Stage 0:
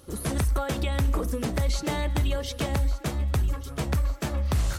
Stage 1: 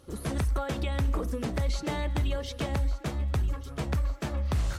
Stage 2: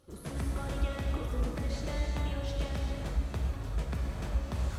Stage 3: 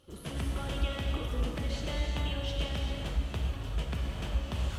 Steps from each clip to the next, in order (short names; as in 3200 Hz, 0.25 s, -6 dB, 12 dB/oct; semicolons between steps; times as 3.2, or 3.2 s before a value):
high shelf 7900 Hz -9.5 dB; gain -3 dB
non-linear reverb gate 0.43 s flat, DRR -1.5 dB; gain -8.5 dB
bell 3000 Hz +12 dB 0.42 oct